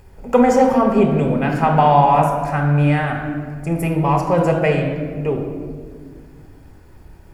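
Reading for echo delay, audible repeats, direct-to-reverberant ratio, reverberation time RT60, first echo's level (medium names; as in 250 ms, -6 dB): no echo, no echo, 2.5 dB, 1.8 s, no echo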